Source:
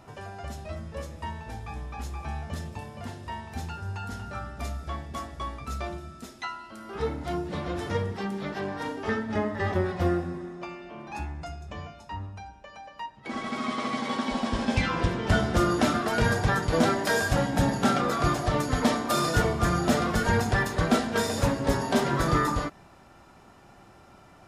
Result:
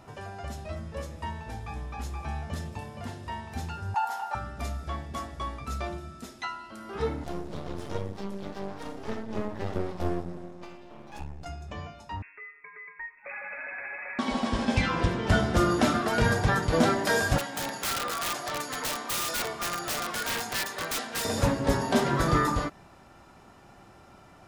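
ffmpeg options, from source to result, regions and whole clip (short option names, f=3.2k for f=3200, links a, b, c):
-filter_complex "[0:a]asettb=1/sr,asplit=3[a][b][c];[a]atrim=end=3.944[d];[b]atrim=start=3.94:end=4.35,asetpts=PTS-STARTPTS,afade=t=in:d=0.004:c=qsin,afade=t=out:st=0.406:d=0.004:c=qsin,highpass=f=840:t=q:w=10,equalizer=f=13k:t=o:w=0.28:g=12[e];[c]atrim=start=4.346[f];[d][e]acrossfade=d=0.004:c1=hsin:c2=qsin[g];[g][f]acrossfade=d=0.004:c1=qsin:c2=hsin,asettb=1/sr,asplit=3[h][i][j];[h]atrim=end=7.244[k];[i]atrim=start=7.24:end=11.46,asetpts=PTS-STARTPTS,afade=t=in:d=0.004:c=qsin,afade=t=out:st=4.216:d=0.004:c=qsin,equalizer=f=1.7k:t=o:w=1.3:g=-10,aeval=exprs='max(val(0),0)':c=same[l];[j]atrim=start=11.456[m];[k][l]acrossfade=d=0.004:c1=hsin:c2=qsin[n];[n][m]acrossfade=d=0.004:c1=qsin:c2=hsin,asettb=1/sr,asplit=3[o][p][q];[o]atrim=end=12.224[r];[p]atrim=start=12.22:end=14.19,asetpts=PTS-STARTPTS,afade=t=in:d=0.004:c=qsin,afade=t=out:st=1.966:d=0.004:c=qsin,highpass=400,acompressor=threshold=-34dB:ratio=4:attack=3.2:release=140:knee=1:detection=peak,lowpass=f=2.4k:t=q:w=0.5098,lowpass=f=2.4k:t=q:w=0.6013,lowpass=f=2.4k:t=q:w=0.9,lowpass=f=2.4k:t=q:w=2.563,afreqshift=-2800[s];[q]atrim=start=14.186[t];[r][s]acrossfade=d=0.004:c1=hsin:c2=qsin[u];[u][t]acrossfade=d=0.004:c1=qsin:c2=hsin,asettb=1/sr,asplit=3[v][w][x];[v]atrim=end=17.384[y];[w]atrim=start=17.38:end=21.25,asetpts=PTS-STARTPTS,afade=t=in:d=0.004:c=qsin,afade=t=out:st=3.866:d=0.004:c=qsin,highpass=f=1.1k:p=1,aeval=exprs='(mod(15.8*val(0)+1,2)-1)/15.8':c=same[z];[x]atrim=start=21.246[aa];[y][z]acrossfade=d=0.004:c1=hsin:c2=qsin[ab];[ab][aa]acrossfade=d=0.004:c1=qsin:c2=hsin"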